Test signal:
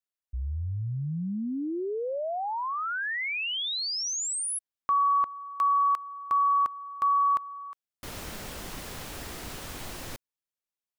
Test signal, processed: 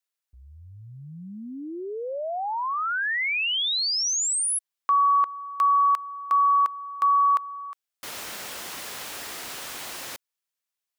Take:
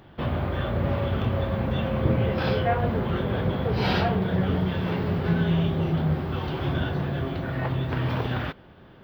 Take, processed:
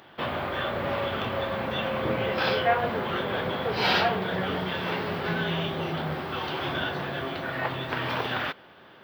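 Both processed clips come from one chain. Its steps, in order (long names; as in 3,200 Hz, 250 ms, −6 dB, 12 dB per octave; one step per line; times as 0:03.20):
high-pass filter 910 Hz 6 dB per octave
level +6 dB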